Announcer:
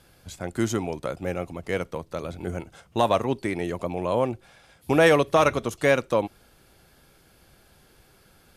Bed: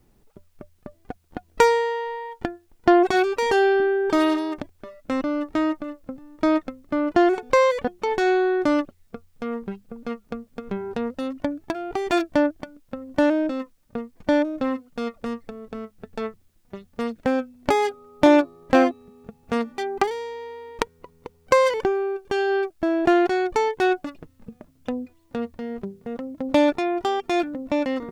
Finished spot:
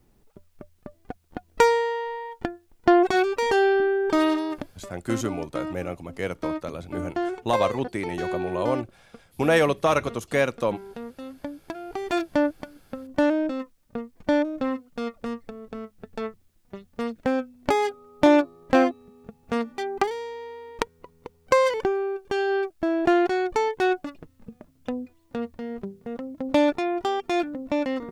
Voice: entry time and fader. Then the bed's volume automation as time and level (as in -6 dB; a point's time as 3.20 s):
4.50 s, -2.0 dB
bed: 4.88 s -1.5 dB
5.24 s -10 dB
11.28 s -10 dB
12.44 s -2 dB